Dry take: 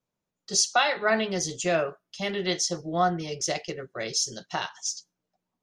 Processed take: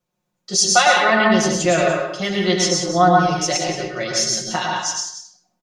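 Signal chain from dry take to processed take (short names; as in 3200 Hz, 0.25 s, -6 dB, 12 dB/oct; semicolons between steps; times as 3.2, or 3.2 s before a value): comb 5.6 ms; on a send: echo 0.18 s -10.5 dB; on the sum: plate-style reverb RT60 0.63 s, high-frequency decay 0.65×, pre-delay 90 ms, DRR 0 dB; gain +4.5 dB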